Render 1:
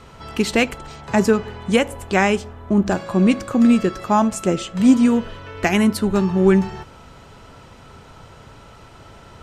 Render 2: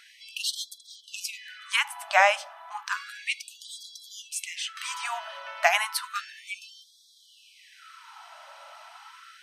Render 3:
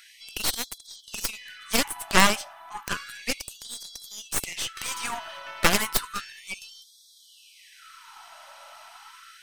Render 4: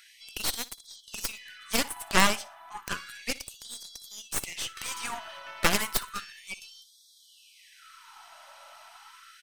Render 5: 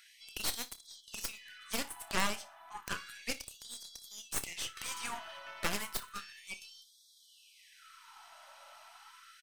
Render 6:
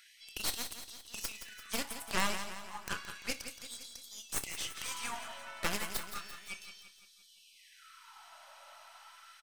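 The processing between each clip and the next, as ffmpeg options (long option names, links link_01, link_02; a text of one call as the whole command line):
ffmpeg -i in.wav -af "bandreject=frequency=7200:width=5.8,afftfilt=real='re*gte(b*sr/1024,540*pow(3300/540,0.5+0.5*sin(2*PI*0.32*pts/sr)))':imag='im*gte(b*sr/1024,540*pow(3300/540,0.5+0.5*sin(2*PI*0.32*pts/sr)))':win_size=1024:overlap=0.75" out.wav
ffmpeg -i in.wav -af "highshelf=frequency=6800:gain=11,aeval=exprs='0.668*(cos(1*acos(clip(val(0)/0.668,-1,1)))-cos(1*PI/2))+0.188*(cos(4*acos(clip(val(0)/0.668,-1,1)))-cos(4*PI/2))+0.0596*(cos(5*acos(clip(val(0)/0.668,-1,1)))-cos(5*PI/2))+0.266*(cos(7*acos(clip(val(0)/0.668,-1,1)))-cos(7*PI/2))+0.119*(cos(8*acos(clip(val(0)/0.668,-1,1)))-cos(8*PI/2))':channel_layout=same,volume=-3dB" out.wav
ffmpeg -i in.wav -af "aecho=1:1:60|120:0.1|0.028,volume=-3.5dB" out.wav
ffmpeg -i in.wav -filter_complex "[0:a]alimiter=limit=-12dB:level=0:latency=1:release=394,asplit=2[link_01][link_02];[link_02]adelay=29,volume=-13dB[link_03];[link_01][link_03]amix=inputs=2:normalize=0,volume=-5dB" out.wav
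ffmpeg -i in.wav -af "aecho=1:1:171|342|513|684|855|1026:0.316|0.168|0.0888|0.0471|0.025|0.0132" out.wav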